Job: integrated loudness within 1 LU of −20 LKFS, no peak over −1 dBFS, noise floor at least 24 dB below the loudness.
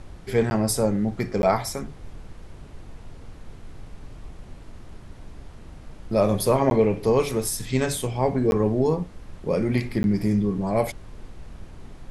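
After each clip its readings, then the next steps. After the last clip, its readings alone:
number of dropouts 5; longest dropout 11 ms; background noise floor −44 dBFS; target noise floor −48 dBFS; integrated loudness −23.5 LKFS; sample peak −7.0 dBFS; target loudness −20.0 LKFS
→ repair the gap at 0:00.50/0:01.42/0:06.70/0:08.51/0:10.03, 11 ms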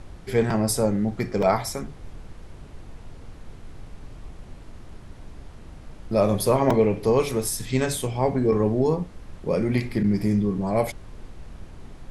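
number of dropouts 0; background noise floor −44 dBFS; target noise floor −48 dBFS
→ noise reduction from a noise print 6 dB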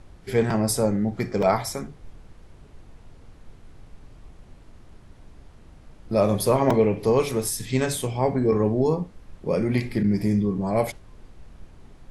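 background noise floor −50 dBFS; integrated loudness −23.5 LKFS; sample peak −7.0 dBFS; target loudness −20.0 LKFS
→ level +3.5 dB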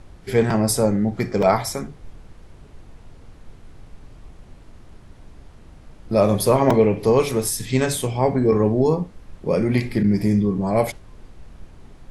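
integrated loudness −20.0 LKFS; sample peak −3.5 dBFS; background noise floor −46 dBFS

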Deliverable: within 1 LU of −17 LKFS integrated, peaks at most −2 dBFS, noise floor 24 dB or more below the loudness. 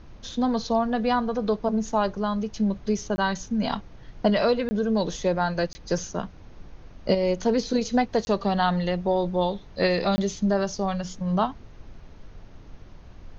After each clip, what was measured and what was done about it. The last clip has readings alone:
number of dropouts 5; longest dropout 20 ms; background noise floor −46 dBFS; target noise floor −50 dBFS; integrated loudness −25.5 LKFS; sample peak −7.5 dBFS; target loudness −17.0 LKFS
→ repair the gap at 0:03.16/0:04.69/0:05.73/0:08.25/0:10.16, 20 ms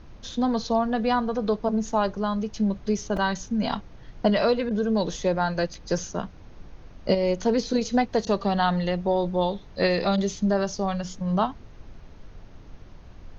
number of dropouts 0; background noise floor −46 dBFS; target noise floor −50 dBFS
→ noise reduction from a noise print 6 dB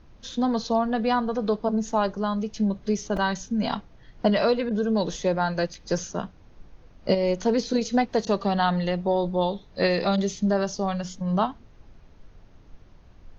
background noise floor −52 dBFS; integrated loudness −25.5 LKFS; sample peak −7.5 dBFS; target loudness −17.0 LKFS
→ level +8.5 dB
brickwall limiter −2 dBFS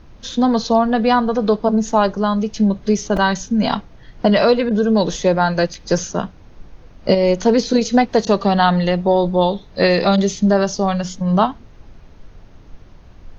integrated loudness −17.0 LKFS; sample peak −2.0 dBFS; background noise floor −44 dBFS

